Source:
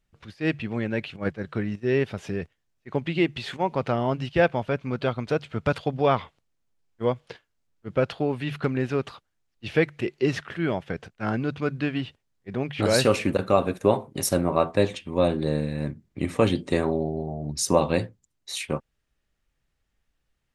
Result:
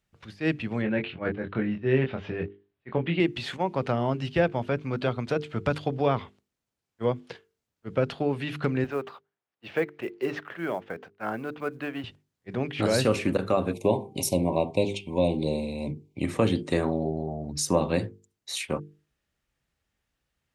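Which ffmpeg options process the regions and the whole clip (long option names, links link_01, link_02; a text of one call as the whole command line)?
ffmpeg -i in.wav -filter_complex "[0:a]asettb=1/sr,asplit=3[link_01][link_02][link_03];[link_01]atrim=end=0.824[link_04];[link_02]atrim=start=0.82:end=3.2,asetpts=PTS-STARTPTS,afade=type=in:duration=0.004:curve=qsin,afade=type=out:start_time=2.376:duration=0.004:curve=qsin,lowpass=frequency=3500:width=0.5412,lowpass=frequency=3500:width=1.3066,asplit=2[link_05][link_06];[link_06]adelay=23,volume=-4.5dB[link_07];[link_05][link_07]amix=inputs=2:normalize=0,atrim=end_sample=104958[link_08];[link_03]atrim=start=3.196[link_09];[link_04][link_08]acrossfade=duration=0.004:curve1=hsin:curve2=qsin[link_10];[link_10][link_09]acrossfade=duration=0.004:curve1=qsin:curve2=hsin,asettb=1/sr,asplit=3[link_11][link_12][link_13];[link_11]atrim=end=8.844[link_14];[link_12]atrim=start=8.84:end=12.04,asetpts=PTS-STARTPTS,afade=type=in:duration=0.004:curve=qsin,afade=type=out:start_time=3.196:duration=0.004:curve=qsin,bandpass=frequency=880:width_type=q:width=0.64,acrusher=bits=8:mode=log:mix=0:aa=0.000001[link_15];[link_13]atrim=start=12.036[link_16];[link_14][link_15]acrossfade=duration=0.004:curve1=hsin:curve2=qsin[link_17];[link_17][link_16]acrossfade=duration=0.004:curve1=qsin:curve2=hsin,asettb=1/sr,asplit=3[link_18][link_19][link_20];[link_18]atrim=end=13.734[link_21];[link_19]atrim=start=13.73:end=16.24,asetpts=PTS-STARTPTS,afade=type=in:duration=0.004:curve=qsin,afade=type=out:start_time=2.506:duration=0.004:curve=qsin,asuperstop=centerf=1500:order=12:qfactor=1.3,equalizer=frequency=1800:width=1.2:gain=5,bandreject=frequency=390.7:width_type=h:width=4,bandreject=frequency=781.4:width_type=h:width=4,bandreject=frequency=1172.1:width_type=h:width=4,bandreject=frequency=1562.8:width_type=h:width=4[link_22];[link_20]atrim=start=16.236[link_23];[link_21][link_22]acrossfade=duration=0.004:curve1=hsin:curve2=qsin[link_24];[link_24][link_23]acrossfade=duration=0.004:curve1=qsin:curve2=hsin,highpass=55,bandreject=frequency=50:width_type=h:width=6,bandreject=frequency=100:width_type=h:width=6,bandreject=frequency=150:width_type=h:width=6,bandreject=frequency=200:width_type=h:width=6,bandreject=frequency=250:width_type=h:width=6,bandreject=frequency=300:width_type=h:width=6,bandreject=frequency=350:width_type=h:width=6,bandreject=frequency=400:width_type=h:width=6,bandreject=frequency=450:width_type=h:width=6,acrossover=split=400[link_25][link_26];[link_26]acompressor=threshold=-27dB:ratio=2[link_27];[link_25][link_27]amix=inputs=2:normalize=0" out.wav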